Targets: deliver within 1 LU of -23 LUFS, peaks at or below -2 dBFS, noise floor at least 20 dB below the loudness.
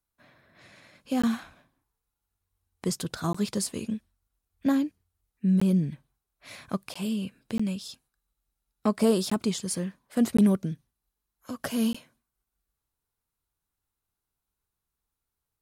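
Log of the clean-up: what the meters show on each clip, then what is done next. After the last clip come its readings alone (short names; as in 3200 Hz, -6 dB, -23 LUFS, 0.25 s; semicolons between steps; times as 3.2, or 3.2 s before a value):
dropouts 8; longest dropout 15 ms; loudness -28.5 LUFS; peak -11.5 dBFS; loudness target -23.0 LUFS
-> interpolate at 1.22/3.33/5.6/6.94/7.58/9.3/10.37/11.93, 15 ms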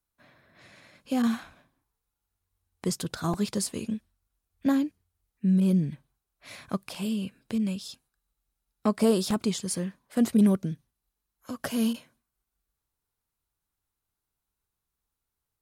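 dropouts 0; loudness -28.0 LUFS; peak -11.5 dBFS; loudness target -23.0 LUFS
-> gain +5 dB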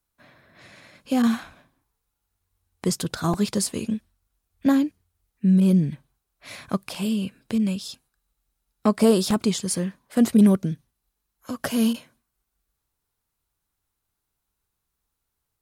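loudness -23.0 LUFS; peak -6.5 dBFS; noise floor -80 dBFS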